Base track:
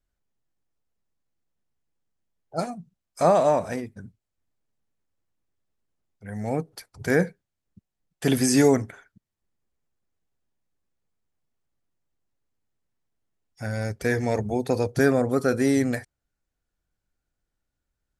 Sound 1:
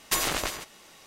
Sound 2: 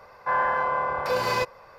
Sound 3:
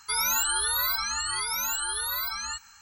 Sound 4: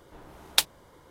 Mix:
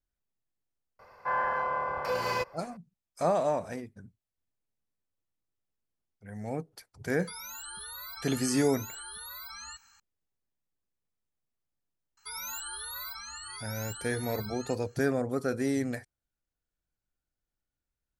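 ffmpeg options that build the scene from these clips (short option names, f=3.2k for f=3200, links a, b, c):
-filter_complex "[3:a]asplit=2[a][b];[0:a]volume=-8dB[c];[2:a]bandreject=f=3.7k:w=8.8[d];[a]acompressor=threshold=-31dB:ratio=6:attack=3.2:release=140:knee=1:detection=peak[e];[d]atrim=end=1.78,asetpts=PTS-STARTPTS,volume=-5.5dB,afade=t=in:d=0.004:c=hsin,afade=t=out:st=1.776:d=0.004:c=hsin,adelay=990[f];[e]atrim=end=2.81,asetpts=PTS-STARTPTS,volume=-8.5dB,afade=t=in:d=0.004:c=hsin,afade=t=out:st=2.806:d=0.004:c=hsin,adelay=7190[g];[b]atrim=end=2.81,asetpts=PTS-STARTPTS,volume=-13dB,afade=t=in:d=0.004:c=hsin,afade=t=out:st=2.806:d=0.004:c=hsin,adelay=12170[h];[c][f][g][h]amix=inputs=4:normalize=0"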